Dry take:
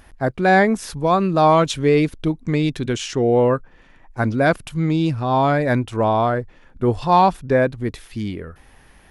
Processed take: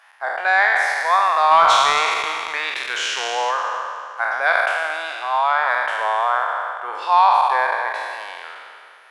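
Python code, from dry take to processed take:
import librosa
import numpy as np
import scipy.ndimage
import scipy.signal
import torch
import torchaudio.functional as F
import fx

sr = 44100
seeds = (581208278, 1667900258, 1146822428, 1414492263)

y = fx.spec_trails(x, sr, decay_s=2.33)
y = scipy.signal.sosfilt(scipy.signal.butter(4, 910.0, 'highpass', fs=sr, output='sos'), y)
y = fx.leveller(y, sr, passes=1, at=(1.51, 3.51))
y = fx.lowpass(y, sr, hz=1900.0, slope=6)
y = y + 10.0 ** (-14.0 / 20.0) * np.pad(y, (int(270 * sr / 1000.0), 0))[:len(y)]
y = y * librosa.db_to_amplitude(4.0)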